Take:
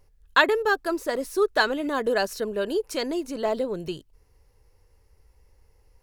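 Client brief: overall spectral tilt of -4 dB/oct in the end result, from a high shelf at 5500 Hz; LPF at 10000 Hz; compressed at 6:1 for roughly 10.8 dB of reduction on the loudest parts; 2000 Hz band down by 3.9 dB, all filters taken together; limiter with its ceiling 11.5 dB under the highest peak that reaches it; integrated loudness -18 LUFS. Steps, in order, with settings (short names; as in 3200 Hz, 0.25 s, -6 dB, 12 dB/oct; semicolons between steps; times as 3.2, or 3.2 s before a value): LPF 10000 Hz; bell 2000 Hz -4.5 dB; high shelf 5500 Hz -6 dB; compressor 6:1, threshold -28 dBFS; gain +17.5 dB; limiter -8.5 dBFS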